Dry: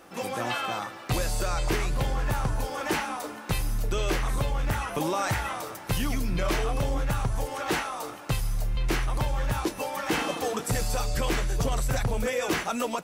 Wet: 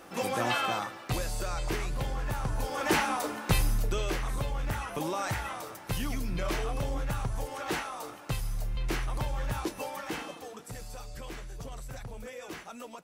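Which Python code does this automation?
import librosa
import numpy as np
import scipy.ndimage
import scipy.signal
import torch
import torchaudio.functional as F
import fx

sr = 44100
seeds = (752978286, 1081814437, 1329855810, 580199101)

y = fx.gain(x, sr, db=fx.line((0.66, 1.0), (1.25, -5.5), (2.39, -5.5), (3.0, 2.5), (3.61, 2.5), (4.1, -5.0), (9.88, -5.0), (10.47, -15.0)))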